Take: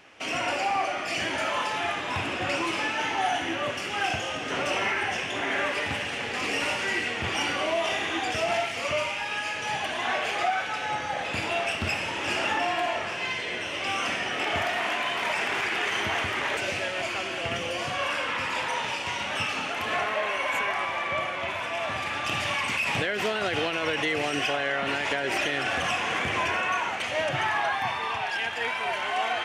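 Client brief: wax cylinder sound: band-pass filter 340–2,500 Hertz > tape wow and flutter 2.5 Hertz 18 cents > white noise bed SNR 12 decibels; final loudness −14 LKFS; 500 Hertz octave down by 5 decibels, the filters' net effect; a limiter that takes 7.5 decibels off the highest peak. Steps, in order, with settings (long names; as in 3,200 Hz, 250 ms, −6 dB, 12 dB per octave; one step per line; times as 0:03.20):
parametric band 500 Hz −6 dB
brickwall limiter −24 dBFS
band-pass filter 340–2,500 Hz
tape wow and flutter 2.5 Hz 18 cents
white noise bed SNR 12 dB
level +19 dB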